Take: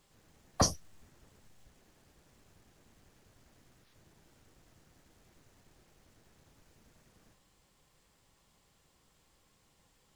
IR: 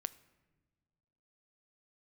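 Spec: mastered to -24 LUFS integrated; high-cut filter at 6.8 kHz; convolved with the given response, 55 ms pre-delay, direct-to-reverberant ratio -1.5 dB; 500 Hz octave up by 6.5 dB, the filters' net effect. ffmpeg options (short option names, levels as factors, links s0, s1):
-filter_complex "[0:a]lowpass=6800,equalizer=f=500:t=o:g=8,asplit=2[s0][s1];[1:a]atrim=start_sample=2205,adelay=55[s2];[s1][s2]afir=irnorm=-1:irlink=0,volume=1.5[s3];[s0][s3]amix=inputs=2:normalize=0,volume=1.58"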